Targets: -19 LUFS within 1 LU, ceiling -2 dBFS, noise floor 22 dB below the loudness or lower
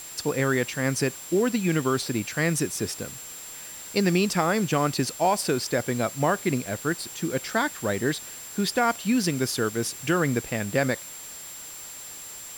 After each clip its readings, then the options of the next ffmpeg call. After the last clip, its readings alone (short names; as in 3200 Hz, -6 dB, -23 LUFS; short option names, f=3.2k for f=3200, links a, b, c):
steady tone 7400 Hz; tone level -40 dBFS; noise floor -40 dBFS; noise floor target -48 dBFS; loudness -26.0 LUFS; peak -9.5 dBFS; loudness target -19.0 LUFS
-> -af "bandreject=f=7.4k:w=30"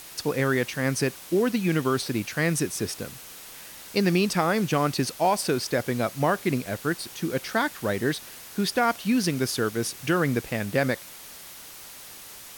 steady tone none; noise floor -44 dBFS; noise floor target -48 dBFS
-> -af "afftdn=nr=6:nf=-44"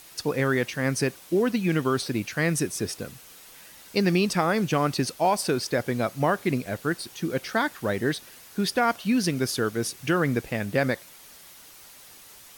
noise floor -49 dBFS; loudness -26.0 LUFS; peak -9.5 dBFS; loudness target -19.0 LUFS
-> -af "volume=7dB"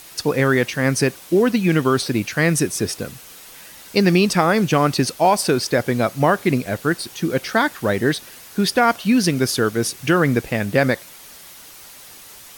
loudness -19.0 LUFS; peak -2.5 dBFS; noise floor -42 dBFS